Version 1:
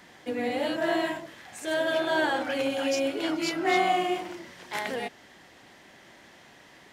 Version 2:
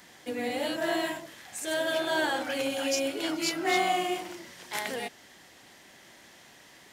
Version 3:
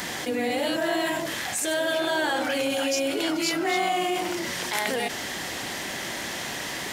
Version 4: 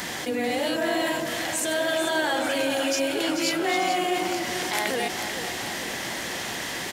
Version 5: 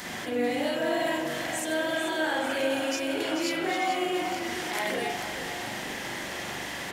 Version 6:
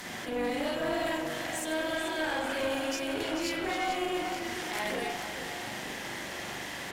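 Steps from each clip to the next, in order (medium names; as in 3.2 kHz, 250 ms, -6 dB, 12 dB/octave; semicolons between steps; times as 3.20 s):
treble shelf 4.7 kHz +11.5 dB; trim -3 dB
level flattener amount 70%
feedback delay 439 ms, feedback 60%, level -9 dB
reverberation, pre-delay 41 ms, DRR -2 dB; trim -7 dB
valve stage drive 23 dB, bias 0.65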